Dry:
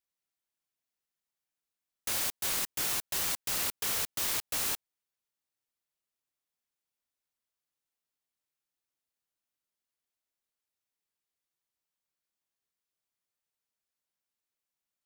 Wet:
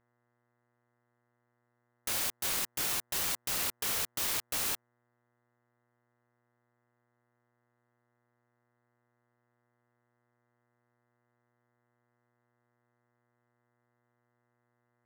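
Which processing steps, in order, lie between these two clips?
local Wiener filter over 9 samples; mains buzz 120 Hz, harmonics 17, -78 dBFS -3 dB/octave

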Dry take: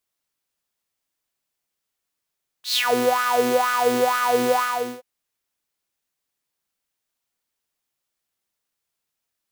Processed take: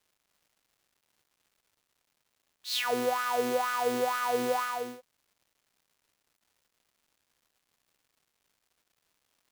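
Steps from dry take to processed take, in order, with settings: crackle 380 per s -50 dBFS; trim -9 dB

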